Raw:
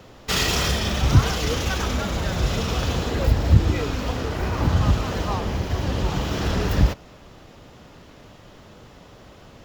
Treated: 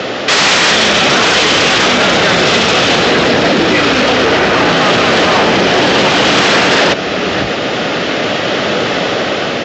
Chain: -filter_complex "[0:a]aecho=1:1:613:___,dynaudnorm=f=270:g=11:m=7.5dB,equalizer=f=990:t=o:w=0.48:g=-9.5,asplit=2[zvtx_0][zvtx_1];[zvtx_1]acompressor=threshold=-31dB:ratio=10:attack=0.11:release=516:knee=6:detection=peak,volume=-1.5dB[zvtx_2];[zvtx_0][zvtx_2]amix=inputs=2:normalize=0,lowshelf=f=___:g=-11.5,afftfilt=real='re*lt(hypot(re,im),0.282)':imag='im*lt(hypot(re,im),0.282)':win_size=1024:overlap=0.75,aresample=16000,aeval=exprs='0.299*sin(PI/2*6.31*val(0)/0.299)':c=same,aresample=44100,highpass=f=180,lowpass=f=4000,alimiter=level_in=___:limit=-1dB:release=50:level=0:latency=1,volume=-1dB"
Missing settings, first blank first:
0.0794, 310, 10dB